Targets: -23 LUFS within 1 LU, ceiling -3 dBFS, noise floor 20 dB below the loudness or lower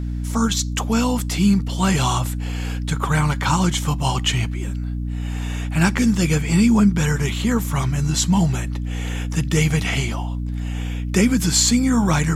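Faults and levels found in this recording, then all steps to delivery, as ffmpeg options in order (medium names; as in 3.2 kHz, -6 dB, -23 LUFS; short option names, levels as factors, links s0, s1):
hum 60 Hz; highest harmonic 300 Hz; hum level -22 dBFS; loudness -20.0 LUFS; peak level -4.0 dBFS; loudness target -23.0 LUFS
-> -af "bandreject=f=60:t=h:w=6,bandreject=f=120:t=h:w=6,bandreject=f=180:t=h:w=6,bandreject=f=240:t=h:w=6,bandreject=f=300:t=h:w=6"
-af "volume=0.708"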